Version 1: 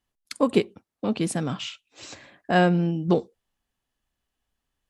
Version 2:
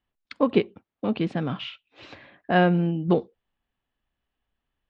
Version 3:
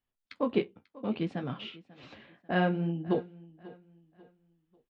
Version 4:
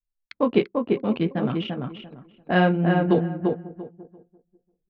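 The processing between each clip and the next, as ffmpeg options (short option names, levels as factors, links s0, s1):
-af "lowpass=f=3500:w=0.5412,lowpass=f=3500:w=1.3066"
-af "flanger=delay=7.5:depth=8.7:regen=-40:speed=0.6:shape=sinusoidal,aecho=1:1:542|1084|1626:0.1|0.035|0.0123,volume=0.668"
-filter_complex "[0:a]anlmdn=0.158,asplit=2[s0][s1];[s1]adelay=343,lowpass=f=1800:p=1,volume=0.708,asplit=2[s2][s3];[s3]adelay=343,lowpass=f=1800:p=1,volume=0.21,asplit=2[s4][s5];[s5]adelay=343,lowpass=f=1800:p=1,volume=0.21[s6];[s0][s2][s4][s6]amix=inputs=4:normalize=0,volume=2.51"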